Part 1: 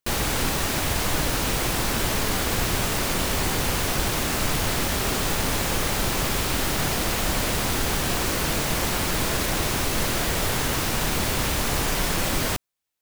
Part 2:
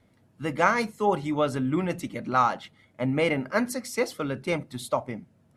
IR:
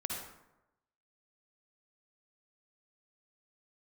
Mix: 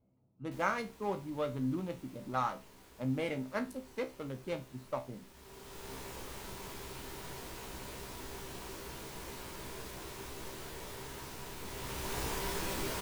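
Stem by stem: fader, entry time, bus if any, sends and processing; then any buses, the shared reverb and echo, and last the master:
0:11.59 −16.5 dB → 0:12.18 −8 dB, 0.45 s, no send, hollow resonant body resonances 400/950 Hz, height 9 dB; automatic ducking −13 dB, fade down 0.75 s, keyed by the second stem
−4.5 dB, 0.00 s, no send, adaptive Wiener filter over 25 samples; high-shelf EQ 8,900 Hz +6.5 dB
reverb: not used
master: tuned comb filter 65 Hz, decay 0.25 s, harmonics all, mix 80%

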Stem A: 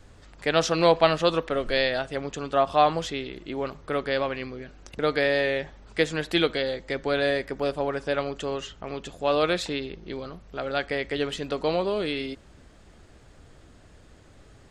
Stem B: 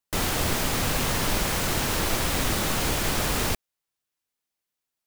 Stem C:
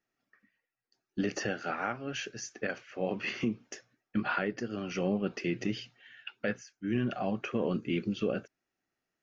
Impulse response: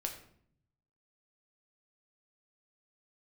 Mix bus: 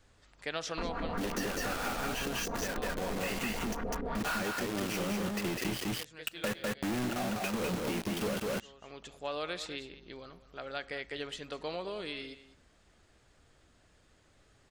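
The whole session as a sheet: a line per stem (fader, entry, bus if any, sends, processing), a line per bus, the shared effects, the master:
−11.0 dB, 0.00 s, no bus, no send, echo send −15.5 dB, tilt shelving filter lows −3.5 dB, about 780 Hz; automatic ducking −12 dB, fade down 0.45 s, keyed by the third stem
−9.0 dB, 0.65 s, bus A, no send, echo send −5 dB, comb filter 4.3 ms, depth 89%; auto-filter low-pass saw up 5.7 Hz 280–1,700 Hz
+2.0 dB, 0.00 s, bus A, send −18.5 dB, echo send −4 dB, log-companded quantiser 2 bits
bus A: 0.0 dB, brickwall limiter −24 dBFS, peak gain reduction 8 dB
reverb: on, RT60 0.60 s, pre-delay 6 ms
echo: single-tap delay 201 ms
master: downward compressor 5 to 1, threshold −32 dBFS, peak gain reduction 10.5 dB

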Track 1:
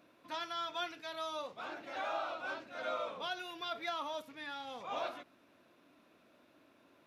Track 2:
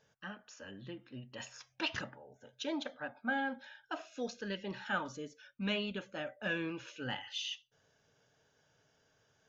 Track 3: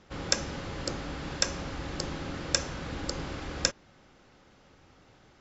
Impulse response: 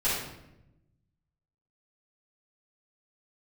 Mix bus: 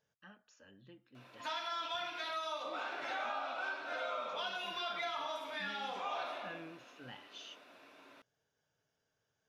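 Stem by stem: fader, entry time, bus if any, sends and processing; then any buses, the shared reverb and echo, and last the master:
+1.0 dB, 1.15 s, send −4 dB, meter weighting curve A
−11.5 dB, 0.00 s, no send, no processing
muted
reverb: on, RT60 0.90 s, pre-delay 3 ms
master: downward compressor 4 to 1, threshold −38 dBFS, peak gain reduction 12 dB

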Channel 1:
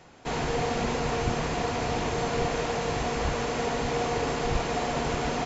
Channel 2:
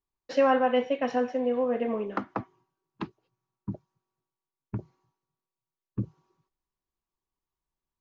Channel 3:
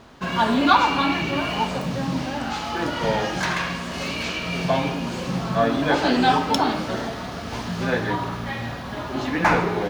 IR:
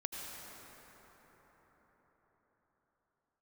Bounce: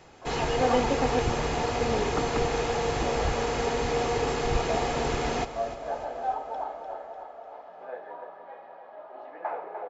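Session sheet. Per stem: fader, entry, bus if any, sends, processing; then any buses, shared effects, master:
−0.5 dB, 0.00 s, no send, echo send −13.5 dB, no processing
−4.0 dB, 0.00 s, no send, no echo send, auto-filter high-pass square 0.84 Hz 260–3,200 Hz
−5.5 dB, 0.00 s, no send, echo send −8 dB, four-pole ladder band-pass 690 Hz, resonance 70%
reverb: not used
echo: repeating echo 298 ms, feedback 57%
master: comb filter 2.4 ms, depth 31%

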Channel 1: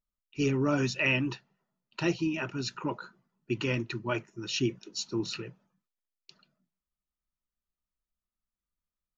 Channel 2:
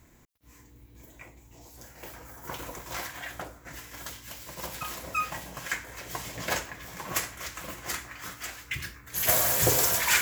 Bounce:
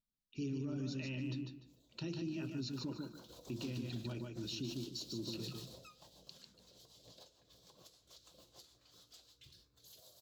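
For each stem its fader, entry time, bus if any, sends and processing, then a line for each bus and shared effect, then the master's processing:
−7.0 dB, 0.00 s, no send, echo send −5 dB, mains-hum notches 50/100/150/200/250/300/350 Hz; downward compressor 2.5 to 1, threshold −41 dBFS, peak gain reduction 12.5 dB
0:03.11 −21.5 dB → 0:03.52 −14.5 dB → 0:05.59 −14.5 dB → 0:06.34 −23.5 dB, 0.70 s, no send, no echo send, octave-band graphic EQ 125/250/500/1,000/2,000/4,000 Hz −5/−11/+8/+7/−11/+11 dB; downward compressor 20 to 1, threshold −33 dBFS, peak gain reduction 18.5 dB; rotating-speaker cabinet horn 6.7 Hz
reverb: not used
echo: repeating echo 148 ms, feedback 24%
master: octave-band graphic EQ 125/250/1,000/2,000/4,000 Hz +8/+11/−6/−7/+9 dB; brickwall limiter −33 dBFS, peak gain reduction 7 dB

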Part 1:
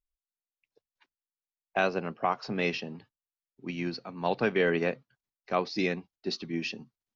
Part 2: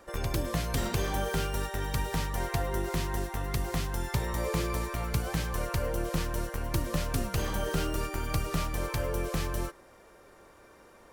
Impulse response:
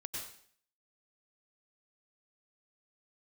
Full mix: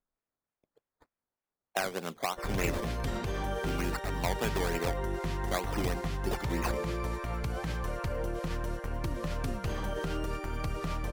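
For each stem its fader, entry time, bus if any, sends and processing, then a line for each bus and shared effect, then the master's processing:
+2.5 dB, 0.00 s, no send, downward compressor 6 to 1, threshold −29 dBFS, peak gain reduction 8.5 dB; low-shelf EQ 410 Hz −6 dB; sample-and-hold swept by an LFO 13×, swing 60% 3.3 Hz
−0.5 dB, 2.30 s, no send, low-pass filter 3,100 Hz 6 dB per octave; brickwall limiter −23.5 dBFS, peak gain reduction 7 dB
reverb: not used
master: one half of a high-frequency compander decoder only

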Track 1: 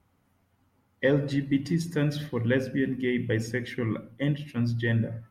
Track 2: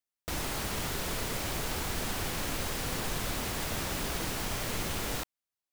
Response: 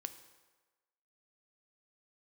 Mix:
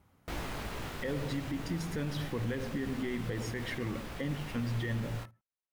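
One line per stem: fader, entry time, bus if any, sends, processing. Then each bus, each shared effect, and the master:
+2.0 dB, 0.00 s, no send, echo send −18.5 dB, downward compressor, threshold −32 dBFS, peak gain reduction 12.5 dB
+1.5 dB, 0.00 s, no send, no echo send, bass and treble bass +1 dB, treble −10 dB; chorus effect 2.6 Hz, delay 17 ms, depth 4.1 ms; automatic ducking −7 dB, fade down 1.75 s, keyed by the first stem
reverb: not used
echo: single-tap delay 103 ms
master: brickwall limiter −25.5 dBFS, peak gain reduction 9 dB

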